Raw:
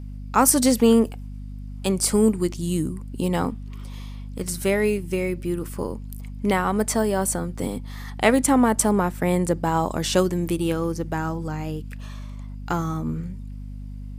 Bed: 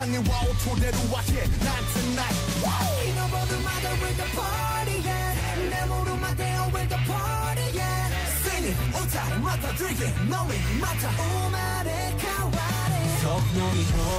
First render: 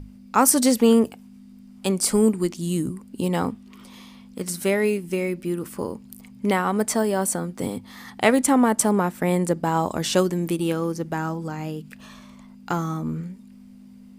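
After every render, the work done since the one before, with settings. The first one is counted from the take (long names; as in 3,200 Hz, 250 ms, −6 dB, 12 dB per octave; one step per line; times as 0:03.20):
mains-hum notches 50/100/150 Hz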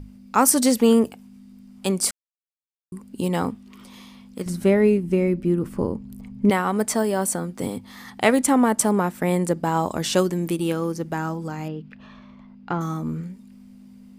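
0:02.11–0:02.92: silence
0:04.46–0:06.50: spectral tilt −3 dB per octave
0:11.68–0:12.81: high-frequency loss of the air 260 metres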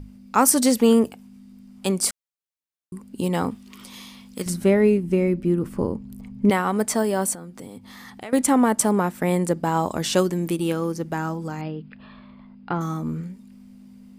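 0:03.51–0:04.54: high-shelf EQ 2,100 Hz +8.5 dB
0:07.34–0:08.33: downward compressor 3 to 1, threshold −38 dBFS
0:11.61–0:12.76: linear-phase brick-wall low-pass 5,200 Hz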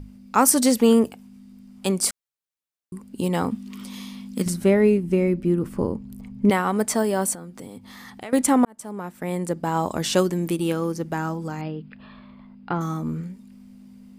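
0:03.52–0:04.48: parametric band 220 Hz +10.5 dB
0:08.65–0:09.96: fade in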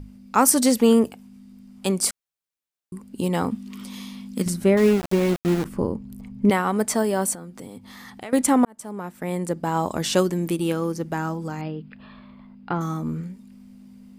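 0:04.77–0:05.65: centre clipping without the shift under −25 dBFS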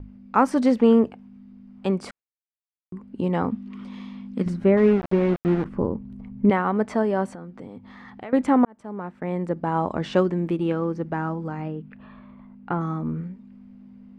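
low-pass filter 2,000 Hz 12 dB per octave
noise gate with hold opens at −43 dBFS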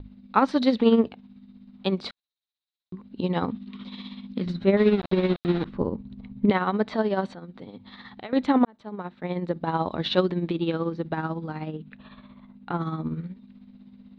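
amplitude tremolo 16 Hz, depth 57%
low-pass with resonance 3,900 Hz, resonance Q 9.3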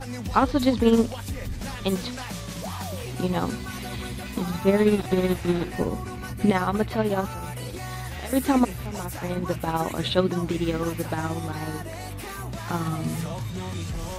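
mix in bed −8 dB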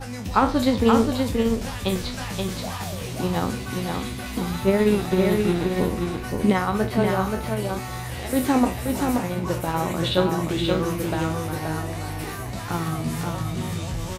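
peak hold with a decay on every bin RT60 0.32 s
on a send: single-tap delay 528 ms −4 dB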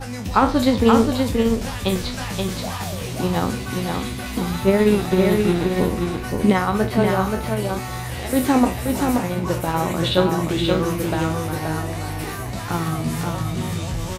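level +3 dB
brickwall limiter −3 dBFS, peak gain reduction 1 dB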